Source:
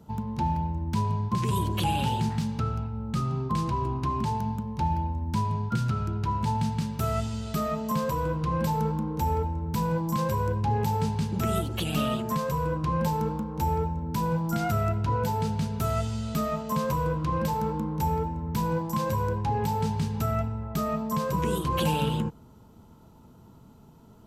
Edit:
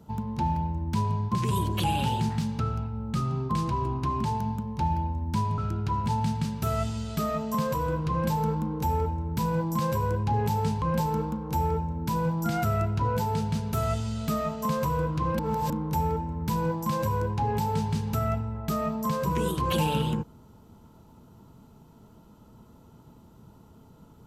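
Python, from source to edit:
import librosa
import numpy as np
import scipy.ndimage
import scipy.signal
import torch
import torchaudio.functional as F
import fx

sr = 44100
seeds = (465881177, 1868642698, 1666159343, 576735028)

y = fx.edit(x, sr, fx.cut(start_s=5.58, length_s=0.37),
    fx.cut(start_s=11.19, length_s=1.7),
    fx.reverse_span(start_s=17.46, length_s=0.31), tone=tone)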